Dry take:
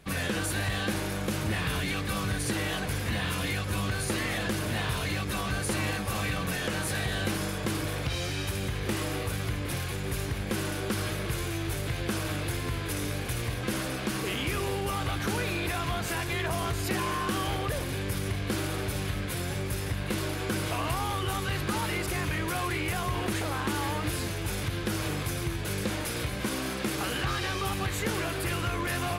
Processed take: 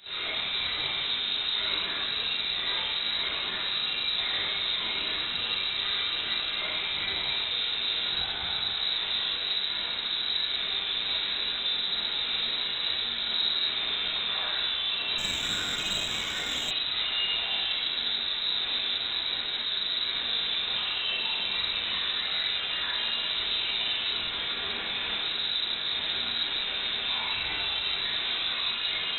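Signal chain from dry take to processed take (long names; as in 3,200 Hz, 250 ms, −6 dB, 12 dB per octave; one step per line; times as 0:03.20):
0:24.10–0:25.13: high-pass filter 220 Hz → 510 Hz 6 dB per octave
brickwall limiter −28 dBFS, peak gain reduction 7.5 dB
soft clipping −39.5 dBFS, distortion −9 dB
convolution reverb RT60 1.4 s, pre-delay 18 ms, DRR −11 dB
voice inversion scrambler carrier 3,900 Hz
0:15.18–0:16.71: windowed peak hold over 3 samples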